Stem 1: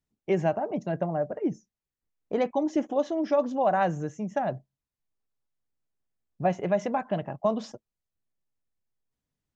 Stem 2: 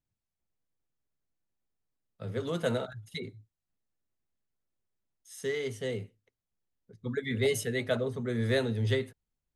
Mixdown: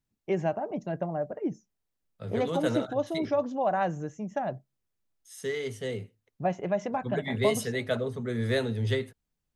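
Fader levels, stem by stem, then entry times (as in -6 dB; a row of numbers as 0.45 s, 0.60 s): -3.0 dB, +0.5 dB; 0.00 s, 0.00 s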